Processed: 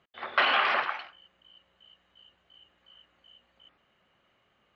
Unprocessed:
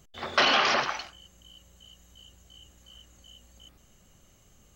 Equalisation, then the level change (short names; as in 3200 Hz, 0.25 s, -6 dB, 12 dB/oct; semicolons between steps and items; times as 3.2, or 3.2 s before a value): band-pass 2300 Hz, Q 0.58; air absorption 430 m; +4.5 dB